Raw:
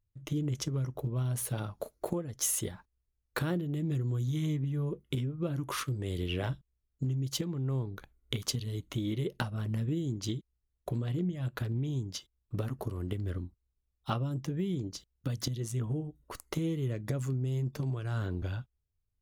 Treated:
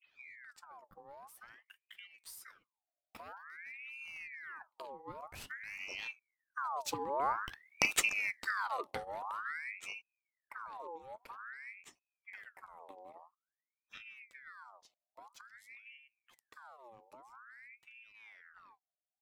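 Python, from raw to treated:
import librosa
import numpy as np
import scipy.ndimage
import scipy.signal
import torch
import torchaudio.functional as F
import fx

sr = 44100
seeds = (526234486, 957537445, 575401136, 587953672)

y = fx.tape_start_head(x, sr, length_s=0.56)
y = fx.doppler_pass(y, sr, speed_mps=22, closest_m=7.9, pass_at_s=7.77)
y = fx.ring_lfo(y, sr, carrier_hz=1600.0, swing_pct=60, hz=0.5)
y = y * librosa.db_to_amplitude(6.5)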